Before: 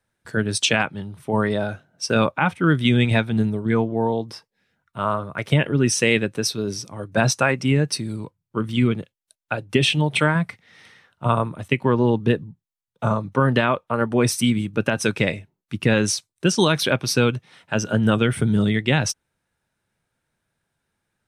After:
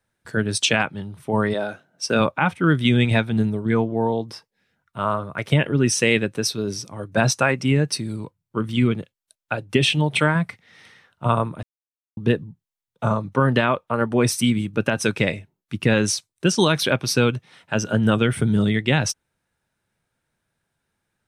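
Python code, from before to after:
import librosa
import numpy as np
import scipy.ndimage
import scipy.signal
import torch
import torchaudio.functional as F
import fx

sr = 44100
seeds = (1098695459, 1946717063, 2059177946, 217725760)

y = fx.highpass(x, sr, hz=fx.line((1.53, 290.0), (2.19, 130.0)), slope=12, at=(1.53, 2.19), fade=0.02)
y = fx.edit(y, sr, fx.silence(start_s=11.63, length_s=0.54), tone=tone)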